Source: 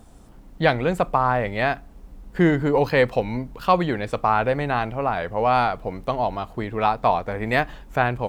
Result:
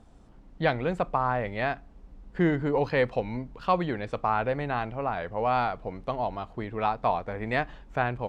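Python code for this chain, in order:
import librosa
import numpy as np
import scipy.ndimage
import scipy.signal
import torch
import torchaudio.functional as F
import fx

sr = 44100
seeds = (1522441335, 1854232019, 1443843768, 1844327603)

y = fx.air_absorb(x, sr, metres=82.0)
y = F.gain(torch.from_numpy(y), -6.0).numpy()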